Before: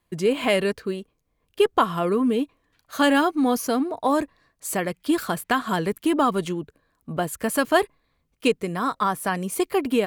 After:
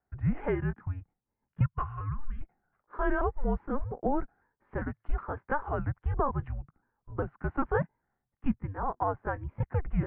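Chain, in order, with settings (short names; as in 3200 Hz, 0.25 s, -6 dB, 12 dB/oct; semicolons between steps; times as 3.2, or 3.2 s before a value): trilling pitch shifter +2 st, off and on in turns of 0.401 s; spectral gain 1.63–2.42, 440–1300 Hz -19 dB; mistuned SSB -290 Hz 170–2000 Hz; gain -6.5 dB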